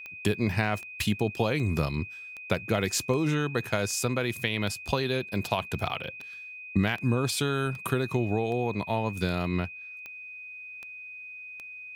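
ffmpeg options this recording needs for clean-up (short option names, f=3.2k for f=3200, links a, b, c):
-af "adeclick=t=4,bandreject=f=2.5k:w=30"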